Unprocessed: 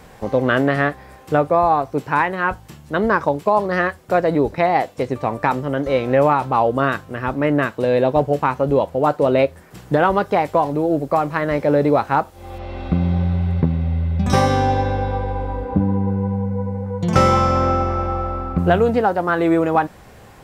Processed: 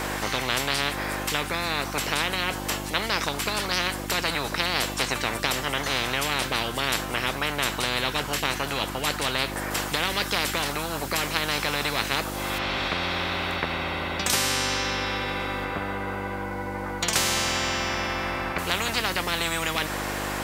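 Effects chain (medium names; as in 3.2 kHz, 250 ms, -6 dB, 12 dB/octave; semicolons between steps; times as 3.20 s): mains buzz 50 Hz, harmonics 7, -29 dBFS; spectrum-flattening compressor 10:1; trim -2.5 dB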